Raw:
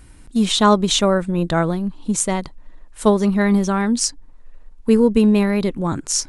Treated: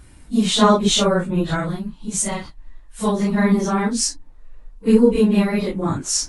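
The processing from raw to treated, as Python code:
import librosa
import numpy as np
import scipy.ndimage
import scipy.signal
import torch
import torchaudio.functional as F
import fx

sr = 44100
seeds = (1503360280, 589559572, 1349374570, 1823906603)

y = fx.phase_scramble(x, sr, seeds[0], window_ms=100)
y = fx.peak_eq(y, sr, hz=440.0, db=-7.0, octaves=2.4, at=(1.44, 3.2))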